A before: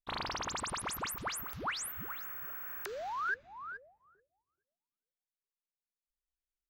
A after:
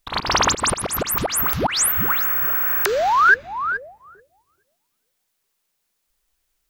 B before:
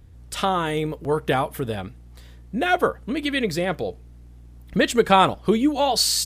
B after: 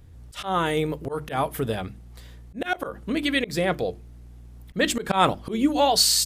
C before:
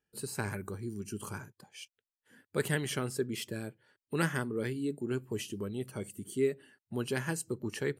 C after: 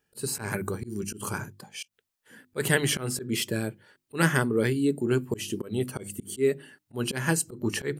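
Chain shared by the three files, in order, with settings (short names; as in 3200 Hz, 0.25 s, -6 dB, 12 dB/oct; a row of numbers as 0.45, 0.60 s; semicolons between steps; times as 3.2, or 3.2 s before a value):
high shelf 8800 Hz +2 dB; notches 50/100/150/200/250/300/350 Hz; auto swell 0.142 s; normalise peaks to -6 dBFS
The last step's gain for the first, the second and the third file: +21.0, +1.0, +10.0 dB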